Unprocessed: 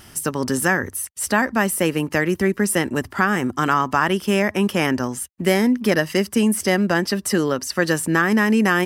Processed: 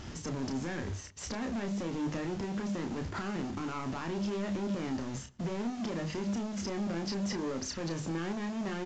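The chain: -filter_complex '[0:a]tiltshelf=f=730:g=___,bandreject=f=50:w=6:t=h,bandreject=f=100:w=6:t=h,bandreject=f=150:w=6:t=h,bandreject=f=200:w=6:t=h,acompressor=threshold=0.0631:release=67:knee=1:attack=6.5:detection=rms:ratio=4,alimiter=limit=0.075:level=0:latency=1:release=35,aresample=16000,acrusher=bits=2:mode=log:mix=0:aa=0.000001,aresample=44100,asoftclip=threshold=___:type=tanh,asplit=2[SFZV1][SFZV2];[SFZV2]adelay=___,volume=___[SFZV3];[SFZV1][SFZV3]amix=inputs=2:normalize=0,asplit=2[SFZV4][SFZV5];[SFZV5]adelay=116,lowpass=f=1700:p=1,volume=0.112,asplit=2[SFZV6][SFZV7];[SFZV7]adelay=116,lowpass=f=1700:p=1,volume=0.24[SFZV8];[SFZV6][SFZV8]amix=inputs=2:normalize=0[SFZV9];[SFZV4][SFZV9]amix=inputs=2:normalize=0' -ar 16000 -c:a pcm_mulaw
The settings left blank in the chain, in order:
6.5, 0.0237, 30, 0.473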